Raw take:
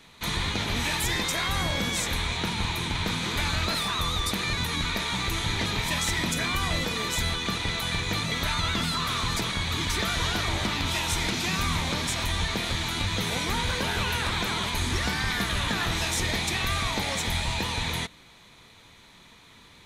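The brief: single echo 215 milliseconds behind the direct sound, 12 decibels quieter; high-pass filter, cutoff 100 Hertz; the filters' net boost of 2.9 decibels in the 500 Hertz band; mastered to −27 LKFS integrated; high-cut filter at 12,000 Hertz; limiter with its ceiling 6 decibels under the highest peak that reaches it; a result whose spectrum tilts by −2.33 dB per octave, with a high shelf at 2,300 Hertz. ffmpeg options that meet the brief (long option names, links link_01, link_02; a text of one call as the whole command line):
ffmpeg -i in.wav -af "highpass=100,lowpass=12000,equalizer=frequency=500:width_type=o:gain=3.5,highshelf=frequency=2300:gain=3.5,alimiter=limit=-17.5dB:level=0:latency=1,aecho=1:1:215:0.251,volume=-1dB" out.wav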